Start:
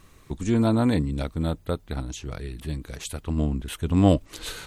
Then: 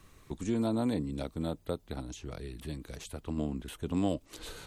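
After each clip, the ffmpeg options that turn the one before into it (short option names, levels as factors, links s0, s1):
-filter_complex "[0:a]acrossover=split=180|1100|2500[s0][s1][s2][s3];[s0]acompressor=threshold=0.0126:ratio=4[s4];[s1]acompressor=threshold=0.0708:ratio=4[s5];[s2]acompressor=threshold=0.002:ratio=4[s6];[s3]acompressor=threshold=0.00794:ratio=4[s7];[s4][s5][s6][s7]amix=inputs=4:normalize=0,volume=0.596"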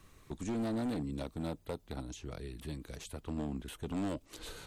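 -af "asoftclip=type=hard:threshold=0.0335,volume=0.794"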